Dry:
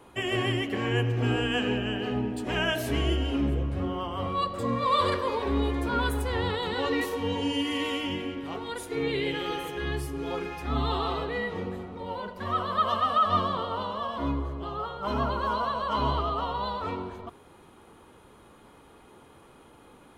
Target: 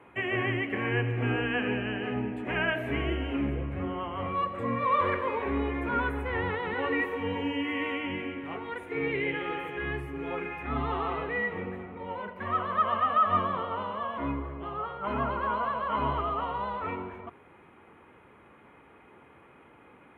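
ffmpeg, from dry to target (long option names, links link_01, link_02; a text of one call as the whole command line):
ffmpeg -i in.wav -filter_complex "[0:a]acrossover=split=2800[link_01][link_02];[link_02]acompressor=threshold=-44dB:ratio=4:attack=1:release=60[link_03];[link_01][link_03]amix=inputs=2:normalize=0,highpass=72,highshelf=frequency=3300:width_type=q:width=3:gain=-13.5,volume=-2.5dB" out.wav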